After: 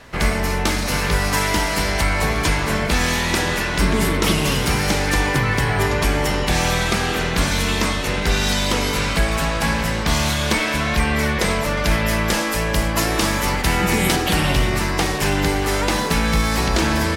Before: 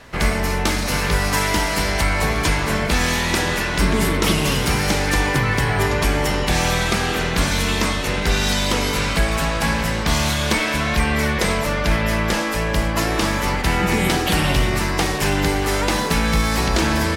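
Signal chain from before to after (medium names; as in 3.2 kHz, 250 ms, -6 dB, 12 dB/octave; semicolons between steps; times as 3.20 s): 11.77–14.16 s: treble shelf 5.7 kHz +6.5 dB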